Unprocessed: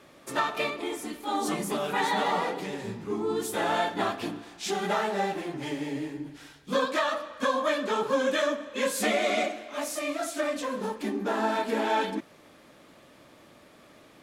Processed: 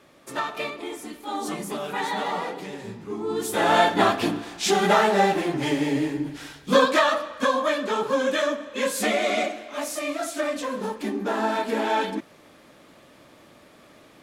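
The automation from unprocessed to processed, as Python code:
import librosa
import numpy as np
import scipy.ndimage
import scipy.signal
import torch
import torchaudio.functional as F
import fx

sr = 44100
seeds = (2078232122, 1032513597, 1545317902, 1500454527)

y = fx.gain(x, sr, db=fx.line((3.17, -1.0), (3.79, 9.0), (6.76, 9.0), (7.76, 2.5)))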